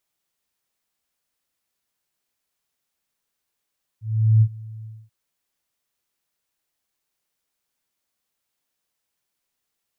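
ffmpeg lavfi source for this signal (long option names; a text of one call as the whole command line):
ffmpeg -f lavfi -i "aevalsrc='0.316*sin(2*PI*110*t)':duration=1.086:sample_rate=44100,afade=type=in:duration=0.406,afade=type=out:start_time=0.406:duration=0.063:silence=0.0708,afade=type=out:start_time=0.84:duration=0.246" out.wav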